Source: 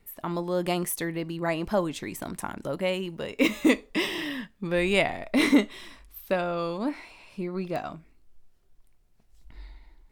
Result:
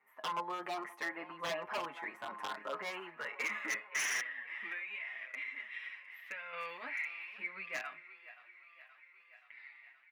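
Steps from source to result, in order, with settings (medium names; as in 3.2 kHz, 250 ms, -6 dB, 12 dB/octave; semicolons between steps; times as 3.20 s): peak limiter -20 dBFS, peak gain reduction 11.5 dB; ten-band graphic EQ 2 kHz +11 dB, 4 kHz -6 dB, 8 kHz -6 dB; band-pass sweep 1 kHz -> 2.3 kHz, 2.54–4.85 s; feedback comb 210 Hz, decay 0.28 s, harmonics all, mix 60%; 4.20–6.53 s: compression 8:1, threshold -49 dBFS, peak gain reduction 18 dB; thinning echo 526 ms, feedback 72%, high-pass 480 Hz, level -16 dB; wavefolder -37.5 dBFS; high-pass 83 Hz; bass shelf 160 Hz -11.5 dB; endless flanger 7.1 ms -0.79 Hz; trim +11 dB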